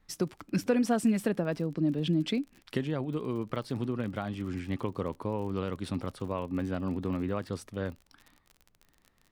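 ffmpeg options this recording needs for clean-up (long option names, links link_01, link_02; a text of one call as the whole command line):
ffmpeg -i in.wav -af "adeclick=threshold=4,agate=range=-21dB:threshold=-57dB" out.wav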